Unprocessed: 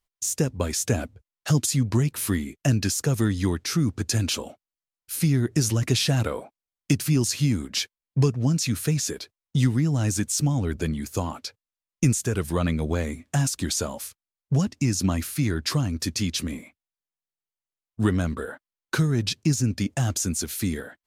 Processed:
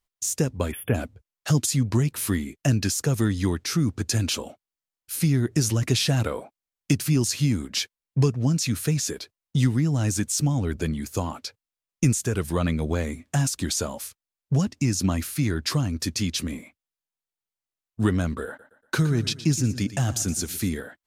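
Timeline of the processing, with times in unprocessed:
0.71–0.95 s: spectral selection erased 3.5–10 kHz
18.47–20.69 s: feedback delay 118 ms, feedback 43%, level -14.5 dB

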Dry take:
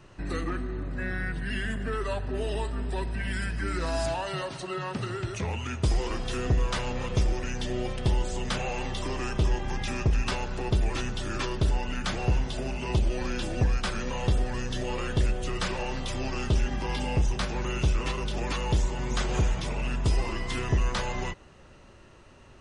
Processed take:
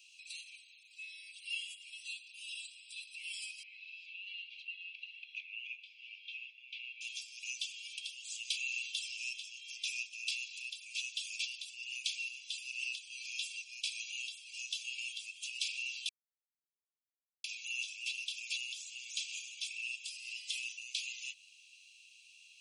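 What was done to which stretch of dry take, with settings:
3.63–7.01 s: low-pass 2.6 kHz 24 dB/octave
16.09–17.44 s: mute
whole clip: compression 3:1, threshold -32 dBFS; Chebyshev high-pass 2.3 kHz, order 10; comb 1.5 ms, depth 45%; trim +4 dB

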